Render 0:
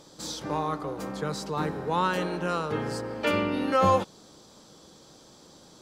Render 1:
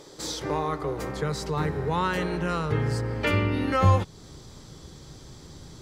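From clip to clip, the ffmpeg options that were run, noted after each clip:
-filter_complex "[0:a]asubboost=boost=11.5:cutoff=130,asplit=2[a][b];[b]acompressor=threshold=-31dB:ratio=6,volume=0dB[c];[a][c]amix=inputs=2:normalize=0,equalizer=f=200:t=o:w=0.33:g=-8,equalizer=f=400:t=o:w=0.33:g=10,equalizer=f=2k:t=o:w=0.33:g=7,volume=-3dB"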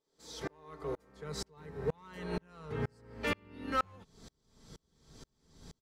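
-af "aecho=1:1:4.5:0.44,asoftclip=type=hard:threshold=-18.5dB,aeval=exprs='val(0)*pow(10,-37*if(lt(mod(-2.1*n/s,1),2*abs(-2.1)/1000),1-mod(-2.1*n/s,1)/(2*abs(-2.1)/1000),(mod(-2.1*n/s,1)-2*abs(-2.1)/1000)/(1-2*abs(-2.1)/1000))/20)':c=same,volume=-3.5dB"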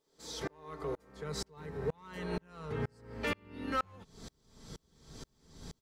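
-af "acompressor=threshold=-48dB:ratio=1.5,volume=5.5dB"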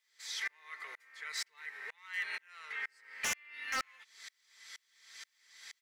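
-af "highpass=f=2k:t=q:w=5.3,aeval=exprs='0.0335*(abs(mod(val(0)/0.0335+3,4)-2)-1)':c=same,volume=1.5dB"

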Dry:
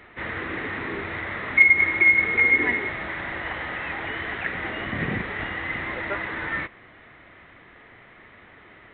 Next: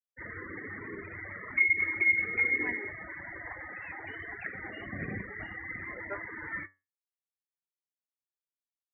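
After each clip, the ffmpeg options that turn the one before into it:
-af "afftfilt=real='re*gte(hypot(re,im),0.0562)':imag='im*gte(hypot(re,im),0.0562)':win_size=1024:overlap=0.75,flanger=delay=9.5:depth=1.1:regen=75:speed=1.1:shape=triangular,volume=-5dB"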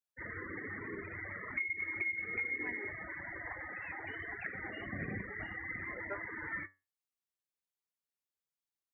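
-af "acompressor=threshold=-33dB:ratio=6,volume=-1.5dB"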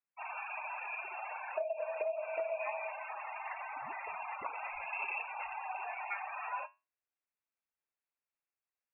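-af "lowpass=f=2.4k:t=q:w=0.5098,lowpass=f=2.4k:t=q:w=0.6013,lowpass=f=2.4k:t=q:w=0.9,lowpass=f=2.4k:t=q:w=2.563,afreqshift=-2800,volume=1.5dB"

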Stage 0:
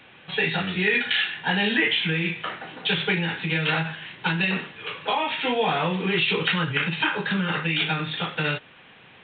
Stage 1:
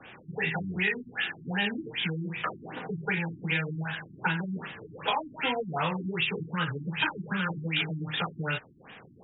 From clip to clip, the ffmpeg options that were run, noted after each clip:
-filter_complex "[0:a]acrossover=split=150|710[a][b][c];[a]acompressor=threshold=-39dB:ratio=4[d];[b]acompressor=threshold=-41dB:ratio=4[e];[c]acompressor=threshold=-28dB:ratio=4[f];[d][e][f]amix=inputs=3:normalize=0,afftfilt=real='re*lt(b*sr/1024,340*pow(3900/340,0.5+0.5*sin(2*PI*2.6*pts/sr)))':imag='im*lt(b*sr/1024,340*pow(3900/340,0.5+0.5*sin(2*PI*2.6*pts/sr)))':win_size=1024:overlap=0.75,volume=2.5dB"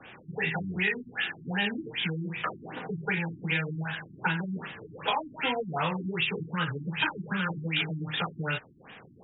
-af anull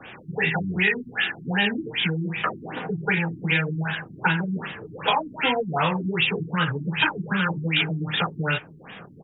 -filter_complex "[0:a]asplit=2[a][b];[b]adelay=790,lowpass=f=2k:p=1,volume=-23dB,asplit=2[c][d];[d]adelay=790,lowpass=f=2k:p=1,volume=0.44,asplit=2[e][f];[f]adelay=790,lowpass=f=2k:p=1,volume=0.44[g];[a][c][e][g]amix=inputs=4:normalize=0,volume=6.5dB"

